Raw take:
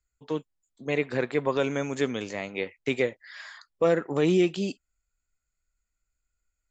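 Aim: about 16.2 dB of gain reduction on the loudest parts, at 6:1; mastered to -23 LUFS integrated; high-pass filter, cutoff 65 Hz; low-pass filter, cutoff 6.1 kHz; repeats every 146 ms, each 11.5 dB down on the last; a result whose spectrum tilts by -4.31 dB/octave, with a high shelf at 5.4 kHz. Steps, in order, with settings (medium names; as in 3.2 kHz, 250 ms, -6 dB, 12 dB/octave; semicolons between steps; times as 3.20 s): high-pass 65 Hz; low-pass 6.1 kHz; treble shelf 5.4 kHz +3 dB; compression 6:1, threshold -36 dBFS; feedback delay 146 ms, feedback 27%, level -11.5 dB; trim +17.5 dB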